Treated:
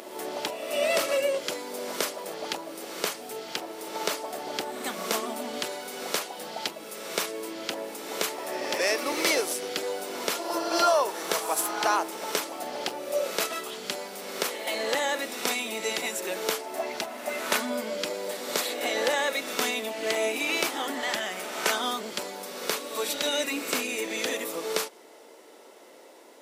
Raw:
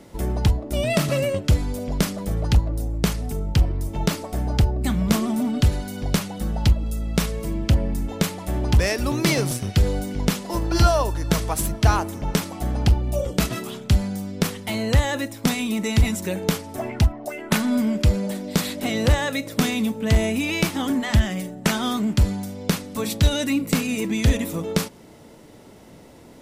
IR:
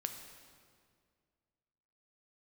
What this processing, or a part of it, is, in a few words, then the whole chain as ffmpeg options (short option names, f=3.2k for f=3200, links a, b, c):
ghost voice: -filter_complex "[0:a]areverse[a];[1:a]atrim=start_sample=2205[b];[a][b]afir=irnorm=-1:irlink=0,areverse,highpass=f=380:w=0.5412,highpass=f=380:w=1.3066"